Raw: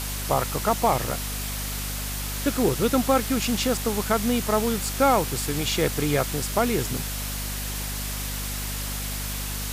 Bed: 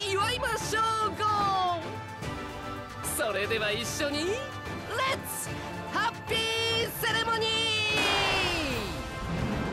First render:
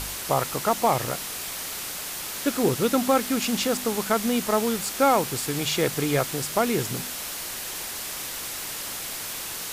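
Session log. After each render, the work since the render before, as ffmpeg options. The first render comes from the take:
-af "bandreject=f=50:t=h:w=4,bandreject=f=100:t=h:w=4,bandreject=f=150:t=h:w=4,bandreject=f=200:t=h:w=4,bandreject=f=250:t=h:w=4"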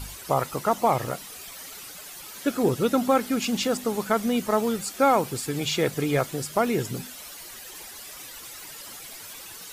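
-af "afftdn=nr=12:nf=-34"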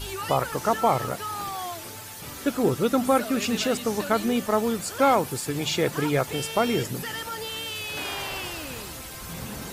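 -filter_complex "[1:a]volume=0.473[s0];[0:a][s0]amix=inputs=2:normalize=0"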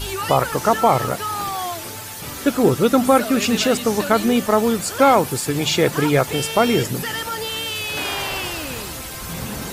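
-af "volume=2.24,alimiter=limit=0.708:level=0:latency=1"

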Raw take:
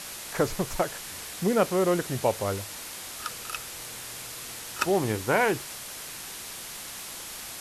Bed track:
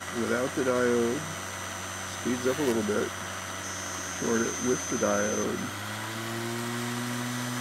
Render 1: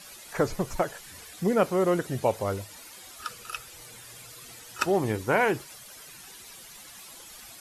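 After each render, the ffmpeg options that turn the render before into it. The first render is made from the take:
-af "afftdn=nr=12:nf=-40"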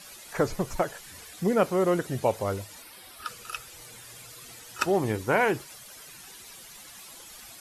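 -filter_complex "[0:a]asettb=1/sr,asplit=3[s0][s1][s2];[s0]atrim=end=2.824[s3];[s1]atrim=start=2.82:end=3.27,asetpts=PTS-STARTPTS,afade=t=in:d=0.004:c=qsin,afade=t=out:st=0.446:d=0.004:c=qsin,equalizer=f=6800:t=o:w=0.33:g=-13.5[s4];[s2]atrim=start=3.266[s5];[s3][s4]acrossfade=d=0.004:c1=hsin:c2=qsin[s6];[s6][s5]acrossfade=d=0.004:c1=qsin:c2=hsin"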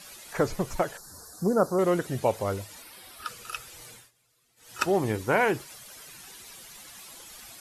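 -filter_complex "[0:a]asettb=1/sr,asplit=3[s0][s1][s2];[s0]atrim=end=0.974[s3];[s1]atrim=start=0.97:end=1.79,asetpts=PTS-STARTPTS,afade=t=in:d=0.004:c=qsin,afade=t=out:st=0.816:d=0.004:c=qsin,asuperstop=centerf=2600:order=8:qfactor=0.92[s4];[s2]atrim=start=1.786[s5];[s3][s4]acrossfade=d=0.004:c1=hsin:c2=qsin[s6];[s6][s5]acrossfade=d=0.004:c1=qsin:c2=hsin,asplit=3[s7][s8][s9];[s7]atrim=end=4.11,asetpts=PTS-STARTPTS,afade=t=out:st=3.9:d=0.21:silence=0.0668344[s10];[s8]atrim=start=4.11:end=4.56,asetpts=PTS-STARTPTS,volume=0.0668[s11];[s9]atrim=start=4.56,asetpts=PTS-STARTPTS,afade=t=in:d=0.21:silence=0.0668344[s12];[s10][s11][s12]concat=n=3:v=0:a=1"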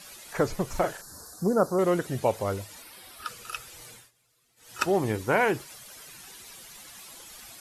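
-filter_complex "[0:a]asettb=1/sr,asplit=3[s0][s1][s2];[s0]atrim=end=0.704[s3];[s1]atrim=start=0.7:end=1.34,asetpts=PTS-STARTPTS,afade=t=in:d=0.004:c=qsin,afade=t=out:st=0.636:d=0.004:c=qsin,asplit=2[s4][s5];[s5]adelay=40,volume=0.562[s6];[s4][s6]amix=inputs=2:normalize=0,atrim=end_sample=28224[s7];[s2]atrim=start=1.336[s8];[s3][s7]acrossfade=d=0.004:c1=hsin:c2=qsin[s9];[s9][s8]acrossfade=d=0.004:c1=qsin:c2=hsin"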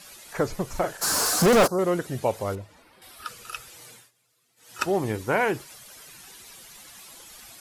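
-filter_complex "[0:a]asplit=3[s0][s1][s2];[s0]afade=t=out:st=1.01:d=0.02[s3];[s1]asplit=2[s4][s5];[s5]highpass=f=720:p=1,volume=79.4,asoftclip=type=tanh:threshold=0.299[s6];[s4][s6]amix=inputs=2:normalize=0,lowpass=f=5000:p=1,volume=0.501,afade=t=in:st=1.01:d=0.02,afade=t=out:st=1.66:d=0.02[s7];[s2]afade=t=in:st=1.66:d=0.02[s8];[s3][s7][s8]amix=inputs=3:normalize=0,asettb=1/sr,asplit=3[s9][s10][s11];[s9]atrim=end=2.554[s12];[s10]atrim=start=2.55:end=3.02,asetpts=PTS-STARTPTS,afade=t=in:d=0.004:c=qsin,afade=t=out:st=0.466:d=0.004:c=qsin,lowpass=f=1100:p=1[s13];[s11]atrim=start=3.016[s14];[s12][s13]acrossfade=d=0.004:c1=hsin:c2=qsin[s15];[s15][s14]acrossfade=d=0.004:c1=qsin:c2=hsin,asettb=1/sr,asplit=3[s16][s17][s18];[s16]atrim=end=3.724[s19];[s17]atrim=start=3.72:end=4.77,asetpts=PTS-STARTPTS,afade=t=in:d=0.004:c=qsin,afade=t=out:st=1.046:d=0.004:c=qsin,highpass=110[s20];[s18]atrim=start=4.766[s21];[s19][s20]acrossfade=d=0.004:c1=hsin:c2=qsin[s22];[s22][s21]acrossfade=d=0.004:c1=qsin:c2=hsin"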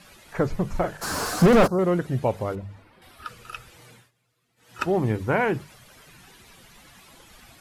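-af "bass=f=250:g=8,treble=f=4000:g=-10,bandreject=f=50:t=h:w=6,bandreject=f=100:t=h:w=6,bandreject=f=150:t=h:w=6,bandreject=f=200:t=h:w=6"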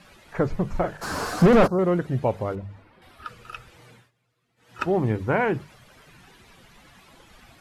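-af "aemphasis=mode=reproduction:type=cd"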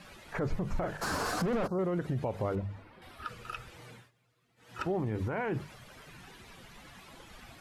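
-af "acompressor=threshold=0.0794:ratio=6,alimiter=limit=0.0631:level=0:latency=1:release=54"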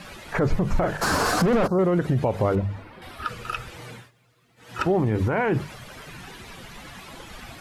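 -af "volume=3.35"

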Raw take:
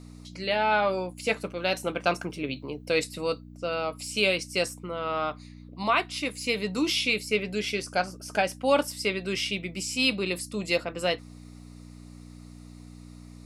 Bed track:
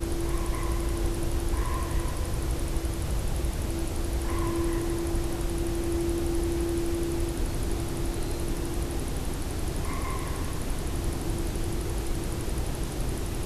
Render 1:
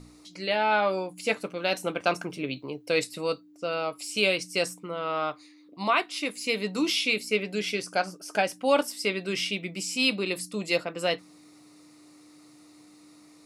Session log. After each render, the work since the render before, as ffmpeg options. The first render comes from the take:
-af "bandreject=f=60:t=h:w=4,bandreject=f=120:t=h:w=4,bandreject=f=180:t=h:w=4,bandreject=f=240:t=h:w=4"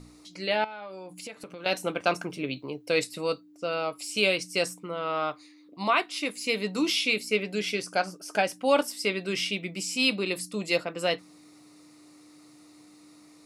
-filter_complex "[0:a]asettb=1/sr,asplit=3[s0][s1][s2];[s0]atrim=end=0.644[s3];[s1]atrim=start=0.64:end=1.66,asetpts=PTS-STARTPTS,afade=t=in:d=0.004:c=qsin,afade=t=out:st=1.016:d=0.004:c=qsin,acompressor=threshold=0.0141:ratio=8:attack=3.2:release=140:knee=1:detection=peak[s4];[s2]atrim=start=1.656[s5];[s3][s4]acrossfade=d=0.004:c1=hsin:c2=qsin[s6];[s6][s5]acrossfade=d=0.004:c1=qsin:c2=hsin"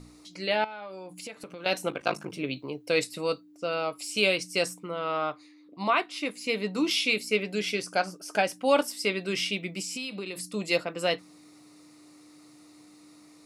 -filter_complex "[0:a]asettb=1/sr,asplit=3[s0][s1][s2];[s0]atrim=end=1.894[s3];[s1]atrim=start=1.89:end=2.33,asetpts=PTS-STARTPTS,afade=t=in:d=0.004:c=qsin,afade=t=out:st=0.436:d=0.004:c=qsin,aeval=exprs='val(0)*sin(2*PI*26*n/s)':c=same[s4];[s2]atrim=start=2.326[s5];[s3][s4]acrossfade=d=0.004:c1=hsin:c2=qsin[s6];[s6][s5]acrossfade=d=0.004:c1=qsin:c2=hsin,asettb=1/sr,asplit=3[s7][s8][s9];[s7]atrim=end=5.174[s10];[s8]atrim=start=5.17:end=6.91,asetpts=PTS-STARTPTS,afade=t=in:d=0.004:c=qsin,afade=t=out:st=1.736:d=0.004:c=qsin,highshelf=f=3800:g=-6.5[s11];[s9]atrim=start=6.906[s12];[s10][s11]acrossfade=d=0.004:c1=hsin:c2=qsin[s13];[s13][s12]acrossfade=d=0.004:c1=qsin:c2=hsin,asettb=1/sr,asplit=3[s14][s15][s16];[s14]atrim=end=9.814[s17];[s15]atrim=start=9.81:end=10.5,asetpts=PTS-STARTPTS,afade=t=in:d=0.004:c=qsin,afade=t=out:st=0.686:d=0.004:c=qsin,acompressor=threshold=0.0282:ratio=10:attack=3.2:release=140:knee=1:detection=peak[s18];[s16]atrim=start=10.496[s19];[s17][s18]acrossfade=d=0.004:c1=hsin:c2=qsin[s20];[s20][s19]acrossfade=d=0.004:c1=qsin:c2=hsin"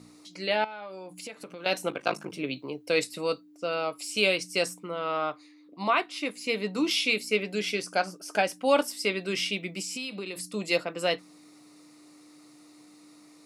-af "highpass=140"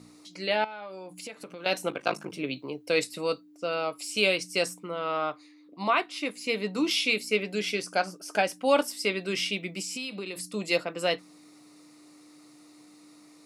-af anull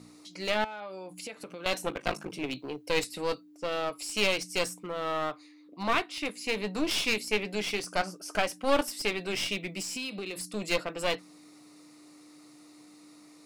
-af "aeval=exprs='clip(val(0),-1,0.0211)':c=same"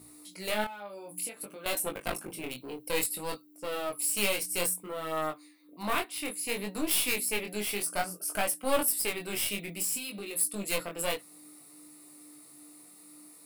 -af "flanger=delay=19:depth=5.7:speed=0.58,aexciter=amount=8:drive=6.3:freq=8600"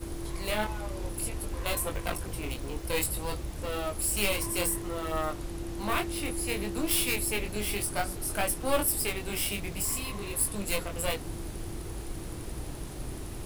-filter_complex "[1:a]volume=0.398[s0];[0:a][s0]amix=inputs=2:normalize=0"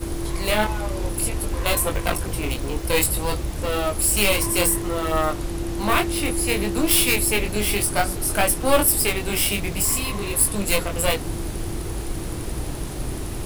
-af "volume=2.99,alimiter=limit=0.708:level=0:latency=1"

